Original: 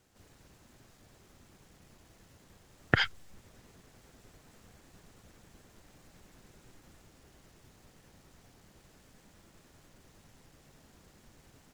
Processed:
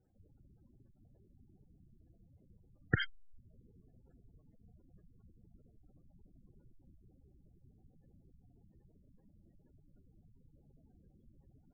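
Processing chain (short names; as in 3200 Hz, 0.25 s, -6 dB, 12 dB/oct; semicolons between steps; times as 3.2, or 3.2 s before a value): spectral gate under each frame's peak -10 dB strong; low shelf 280 Hz +6 dB; gain -7 dB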